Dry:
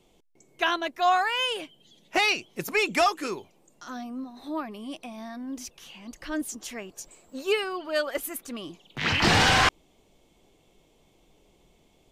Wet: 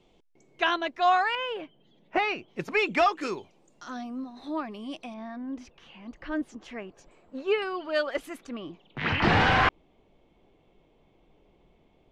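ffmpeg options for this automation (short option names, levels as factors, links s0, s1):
-af "asetnsamples=n=441:p=0,asendcmd='1.35 lowpass f 1800;2.48 lowpass f 3300;3.21 lowpass f 5900;5.14 lowpass f 2300;7.62 lowpass f 4300;8.47 lowpass f 2300',lowpass=4400"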